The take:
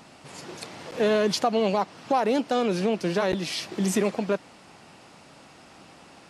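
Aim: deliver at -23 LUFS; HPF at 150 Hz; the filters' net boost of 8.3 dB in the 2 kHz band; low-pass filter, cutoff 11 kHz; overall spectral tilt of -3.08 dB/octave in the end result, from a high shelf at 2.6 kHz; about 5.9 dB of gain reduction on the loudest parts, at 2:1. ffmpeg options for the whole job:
-af "highpass=150,lowpass=11000,equalizer=f=2000:t=o:g=7.5,highshelf=f=2600:g=7,acompressor=threshold=0.0447:ratio=2,volume=1.88"

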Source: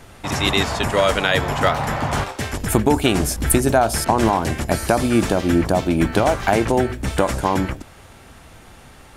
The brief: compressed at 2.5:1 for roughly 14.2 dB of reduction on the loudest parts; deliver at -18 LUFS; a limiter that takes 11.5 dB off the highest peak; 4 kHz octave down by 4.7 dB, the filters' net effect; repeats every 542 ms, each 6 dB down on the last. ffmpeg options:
-af "equalizer=f=4000:t=o:g=-6,acompressor=threshold=0.0178:ratio=2.5,alimiter=level_in=1.5:limit=0.0631:level=0:latency=1,volume=0.668,aecho=1:1:542|1084|1626|2168|2710|3252:0.501|0.251|0.125|0.0626|0.0313|0.0157,volume=8.41"

